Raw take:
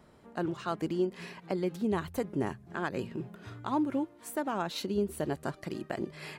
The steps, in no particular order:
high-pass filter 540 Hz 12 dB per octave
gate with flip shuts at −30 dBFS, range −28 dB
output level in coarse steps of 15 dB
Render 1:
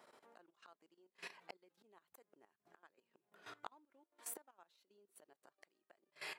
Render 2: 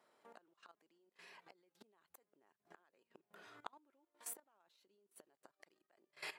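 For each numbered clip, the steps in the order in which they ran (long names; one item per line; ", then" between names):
gate with flip, then output level in coarse steps, then high-pass filter
gate with flip, then high-pass filter, then output level in coarse steps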